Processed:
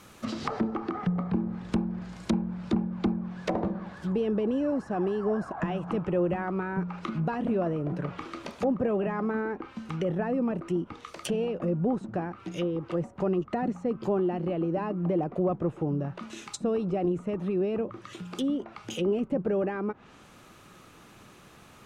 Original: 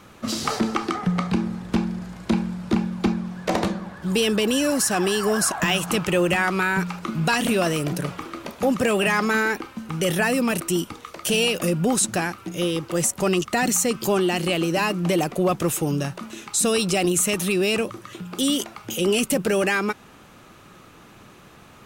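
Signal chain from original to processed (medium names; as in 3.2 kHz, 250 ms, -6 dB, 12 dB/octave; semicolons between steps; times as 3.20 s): low-pass that closes with the level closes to 800 Hz, closed at -20 dBFS; treble shelf 4.9 kHz +8.5 dB, from 7.57 s +3.5 dB; trim -5 dB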